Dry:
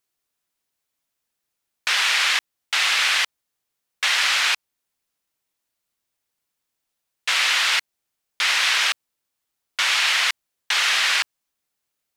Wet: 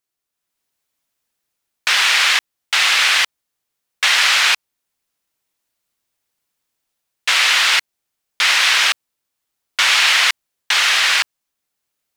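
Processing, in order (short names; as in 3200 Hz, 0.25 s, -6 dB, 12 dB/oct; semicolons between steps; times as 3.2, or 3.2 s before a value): AGC gain up to 7 dB; in parallel at -6 dB: bit-crush 5-bit; on the sum: gain -3 dB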